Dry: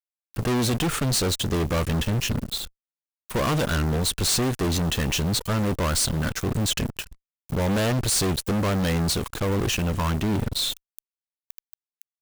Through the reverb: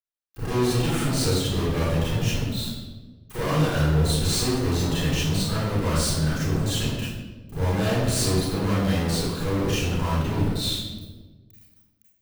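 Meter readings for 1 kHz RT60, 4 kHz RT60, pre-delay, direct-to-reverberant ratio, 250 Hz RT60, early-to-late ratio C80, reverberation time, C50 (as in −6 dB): 1.1 s, 0.85 s, 29 ms, −10.0 dB, 1.8 s, 2.0 dB, 1.3 s, −2.5 dB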